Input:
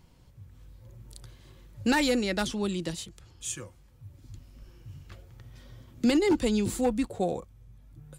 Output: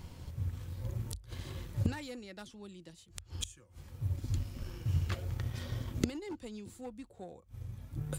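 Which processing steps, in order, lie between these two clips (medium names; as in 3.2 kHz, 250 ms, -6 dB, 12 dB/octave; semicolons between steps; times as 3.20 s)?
inverted gate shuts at -31 dBFS, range -28 dB; peaking EQ 83 Hz +10.5 dB 0.36 oct; hum notches 50/100 Hz; in parallel at -6.5 dB: crossover distortion -50 dBFS; on the sum: trim +8.5 dB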